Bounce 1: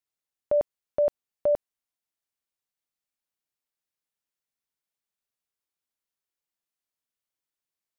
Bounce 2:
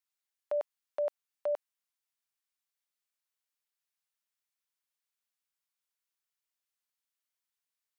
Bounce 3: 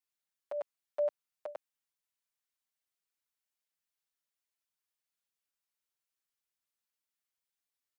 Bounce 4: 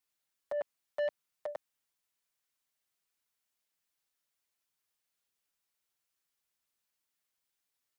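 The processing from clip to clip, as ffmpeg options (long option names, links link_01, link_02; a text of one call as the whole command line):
ffmpeg -i in.wav -af "highpass=940" out.wav
ffmpeg -i in.wav -filter_complex "[0:a]asplit=2[link_01][link_02];[link_02]adelay=6.2,afreqshift=0.86[link_03];[link_01][link_03]amix=inputs=2:normalize=1,volume=1dB" out.wav
ffmpeg -i in.wav -af "asoftclip=type=tanh:threshold=-34dB,volume=5dB" out.wav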